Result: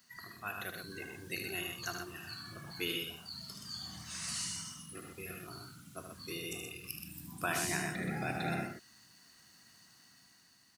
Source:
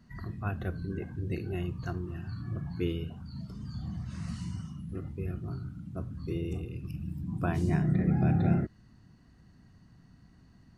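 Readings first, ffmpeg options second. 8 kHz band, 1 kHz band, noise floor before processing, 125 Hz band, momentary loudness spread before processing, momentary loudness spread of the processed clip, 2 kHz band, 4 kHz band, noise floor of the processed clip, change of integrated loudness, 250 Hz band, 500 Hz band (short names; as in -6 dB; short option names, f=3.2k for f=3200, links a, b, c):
n/a, +0.5 dB, -59 dBFS, -16.0 dB, 13 LU, 23 LU, +6.5 dB, +12.5 dB, -64 dBFS, -6.0 dB, -11.5 dB, -5.5 dB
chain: -filter_complex "[0:a]aderivative,dynaudnorm=f=150:g=9:m=4.5dB,asplit=2[a][b];[b]aecho=0:1:75.8|125.4:0.447|0.501[c];[a][c]amix=inputs=2:normalize=0,volume=12.5dB"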